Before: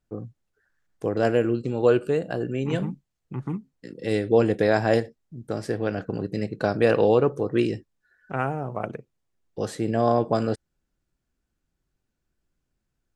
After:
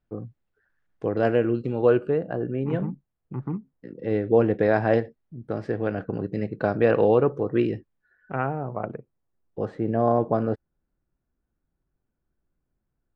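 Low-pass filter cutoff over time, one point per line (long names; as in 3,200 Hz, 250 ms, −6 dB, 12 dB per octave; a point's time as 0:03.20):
0:01.69 2,900 Hz
0:02.27 1,500 Hz
0:04.10 1,500 Hz
0:04.79 2,300 Hz
0:08.33 2,300 Hz
0:08.89 1,400 Hz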